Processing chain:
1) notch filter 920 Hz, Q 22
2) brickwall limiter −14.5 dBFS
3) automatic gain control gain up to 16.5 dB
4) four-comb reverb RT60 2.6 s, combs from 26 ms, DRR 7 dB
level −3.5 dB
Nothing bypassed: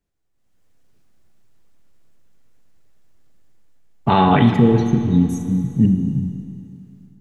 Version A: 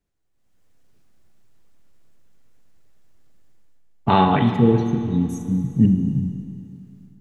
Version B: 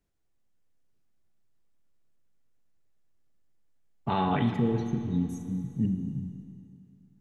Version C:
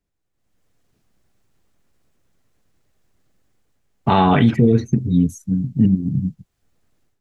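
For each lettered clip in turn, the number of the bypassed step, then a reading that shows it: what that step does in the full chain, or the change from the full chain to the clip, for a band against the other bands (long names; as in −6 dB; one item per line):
2, change in integrated loudness −2.5 LU
3, change in integrated loudness −12.5 LU
4, change in momentary loudness spread −4 LU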